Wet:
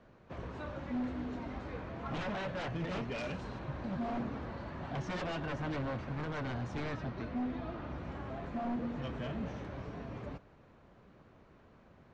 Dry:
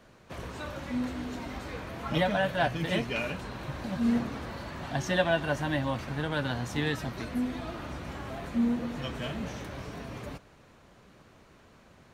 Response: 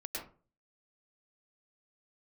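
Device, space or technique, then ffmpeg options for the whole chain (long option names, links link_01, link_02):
synthesiser wavefolder: -filter_complex "[0:a]aeval=exprs='0.0422*(abs(mod(val(0)/0.0422+3,4)-2)-1)':channel_layout=same,lowpass=frequency=7400:width=0.5412,lowpass=frequency=7400:width=1.3066,asettb=1/sr,asplit=3[link_01][link_02][link_03];[link_01]atrim=end=6.834[link_04];[link_02]atrim=start=6.83:end=7.98,asetpts=PTS-STARTPTS,afade=type=in:duration=0.004:curve=qsin,afade=type=out:start_time=1.146:duration=0.004:curve=qsin,lowpass=5900[link_05];[link_03]atrim=start=7.976[link_06];[link_04][link_05]acrossfade=duration=0.004:curve1=hsin:curve2=qsin[link_07];[link_07][link_06]acrossfade=duration=0.004:curve1=qsin:curve2=hsin,lowpass=frequency=1300:poles=1,asettb=1/sr,asplit=3[link_08][link_09][link_10];[link_08]atrim=end=3.184[link_11];[link_09]atrim=start=3.18:end=3.59,asetpts=PTS-STARTPTS,afade=type=in:duration=0.004:curve=qsin,afade=type=out:start_time=0.406:duration=0.004:curve=qsin,bass=frequency=250:gain=0,treble=frequency=4000:gain=10[link_12];[link_10]atrim=start=3.586[link_13];[link_11][link_12]acrossfade=duration=0.004:curve1=hsin:curve2=qsin[link_14];[link_14][link_13]acrossfade=duration=0.004:curve1=qsin:curve2=hsin,volume=-2.5dB"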